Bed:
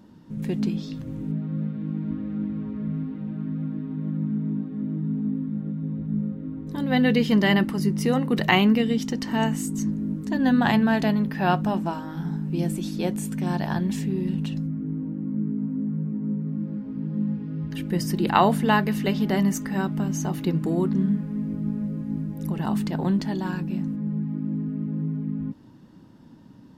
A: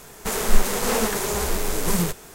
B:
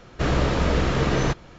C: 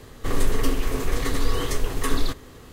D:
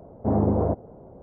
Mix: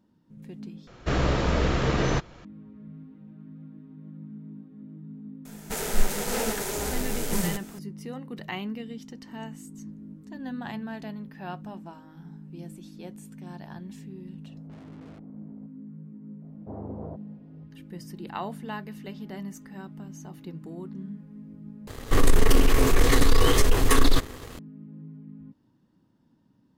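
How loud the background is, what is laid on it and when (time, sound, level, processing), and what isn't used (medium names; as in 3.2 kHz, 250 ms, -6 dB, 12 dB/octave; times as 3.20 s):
bed -15.5 dB
0.87 s: replace with B -2.5 dB
5.45 s: add A -5.5 dB + band-stop 1.1 kHz, Q 5.7
14.45 s: add D -11.5 dB + valve stage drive 39 dB, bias 0.6
16.42 s: add D -16 dB
21.87 s: replace with C -0.5 dB + waveshaping leveller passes 2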